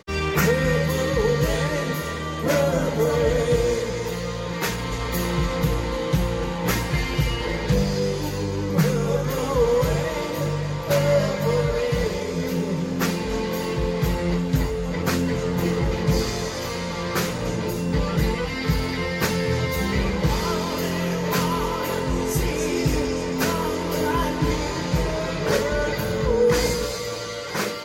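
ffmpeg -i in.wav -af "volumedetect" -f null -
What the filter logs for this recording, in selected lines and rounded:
mean_volume: -22.9 dB
max_volume: -6.5 dB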